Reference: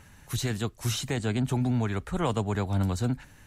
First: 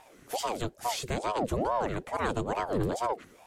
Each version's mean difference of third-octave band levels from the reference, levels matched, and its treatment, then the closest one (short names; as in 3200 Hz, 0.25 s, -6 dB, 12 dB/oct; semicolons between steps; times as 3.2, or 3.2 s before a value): 6.5 dB: ring modulator with a swept carrier 530 Hz, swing 60%, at 2.3 Hz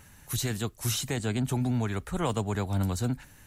1.5 dB: high shelf 8800 Hz +11.5 dB; gain -1.5 dB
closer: second